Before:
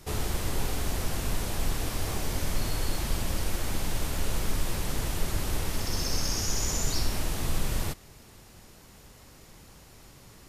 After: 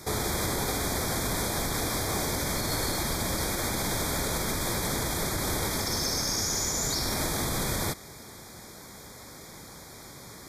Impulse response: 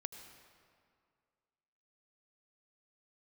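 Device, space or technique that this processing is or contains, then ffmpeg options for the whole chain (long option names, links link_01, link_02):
PA system with an anti-feedback notch: -af "highpass=frequency=170:poles=1,asuperstop=centerf=2800:order=12:qfactor=3.7,alimiter=level_in=4dB:limit=-24dB:level=0:latency=1:release=58,volume=-4dB,volume=8.5dB"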